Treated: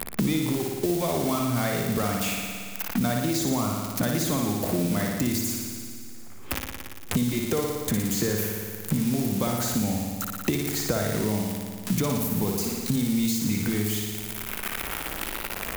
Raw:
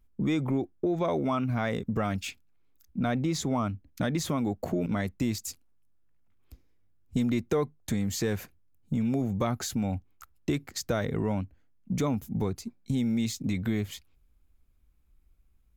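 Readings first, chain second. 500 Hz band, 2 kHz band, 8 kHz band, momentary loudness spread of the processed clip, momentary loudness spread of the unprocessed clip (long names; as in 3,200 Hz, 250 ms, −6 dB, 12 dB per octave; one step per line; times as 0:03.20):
+3.0 dB, +6.5 dB, +10.0 dB, 7 LU, 8 LU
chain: spike at every zero crossing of −24 dBFS
on a send: flutter between parallel walls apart 9.8 metres, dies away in 1 s
on the sum: multiband upward and downward compressor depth 100%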